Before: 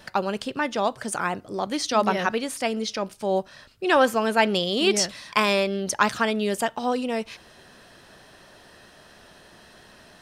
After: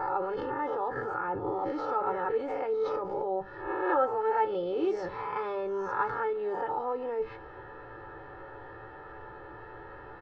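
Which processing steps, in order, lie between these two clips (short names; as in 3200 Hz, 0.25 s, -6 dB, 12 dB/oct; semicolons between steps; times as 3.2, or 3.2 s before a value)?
spectral swells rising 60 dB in 0.59 s; resonant high shelf 1900 Hz -9 dB, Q 1.5; notches 50/100/150/200 Hz; in parallel at +2 dB: negative-ratio compressor -33 dBFS, ratio -1; on the sum: comb 2.3 ms, depth 98%; low-pass opened by the level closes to 2600 Hz, open at -10.5 dBFS; tape spacing loss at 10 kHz 42 dB; resonator 110 Hz, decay 0.19 s, harmonics all, mix 70%; on a send at -22 dB: reverb RT60 1.0 s, pre-delay 3 ms; on the sum: mismatched tape noise reduction encoder only; gain -5 dB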